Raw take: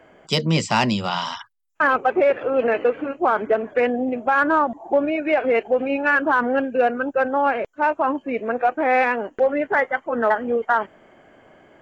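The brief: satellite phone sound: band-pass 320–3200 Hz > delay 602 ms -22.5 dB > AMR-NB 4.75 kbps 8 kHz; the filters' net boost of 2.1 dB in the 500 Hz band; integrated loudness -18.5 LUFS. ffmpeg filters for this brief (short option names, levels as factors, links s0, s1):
-af "highpass=320,lowpass=3200,equalizer=f=500:t=o:g=3,aecho=1:1:602:0.075,volume=1.33" -ar 8000 -c:a libopencore_amrnb -b:a 4750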